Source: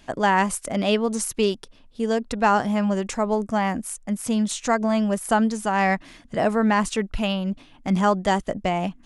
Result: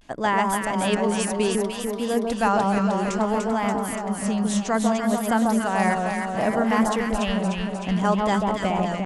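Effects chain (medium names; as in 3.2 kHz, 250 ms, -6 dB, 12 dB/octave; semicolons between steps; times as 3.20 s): echo whose repeats swap between lows and highs 148 ms, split 1.2 kHz, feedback 81%, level -2 dB; vibrato 0.62 Hz 74 cents; trim -3 dB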